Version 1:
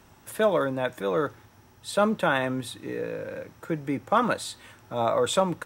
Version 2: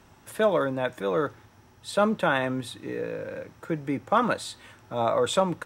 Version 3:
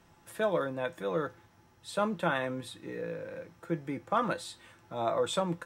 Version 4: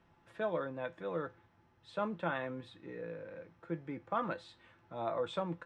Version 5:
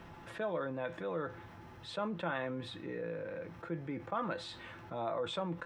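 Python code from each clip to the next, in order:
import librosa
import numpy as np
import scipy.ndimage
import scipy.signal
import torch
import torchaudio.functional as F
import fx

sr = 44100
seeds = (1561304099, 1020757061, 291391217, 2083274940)

y1 = fx.high_shelf(x, sr, hz=11000.0, db=-8.0)
y2 = fx.comb_fb(y1, sr, f0_hz=170.0, decay_s=0.16, harmonics='all', damping=0.0, mix_pct=70)
y3 = scipy.signal.sosfilt(scipy.signal.butter(2, 3200.0, 'lowpass', fs=sr, output='sos'), y2)
y3 = F.gain(torch.from_numpy(y3), -6.0).numpy()
y4 = fx.env_flatten(y3, sr, amount_pct=50)
y4 = F.gain(torch.from_numpy(y4), -2.5).numpy()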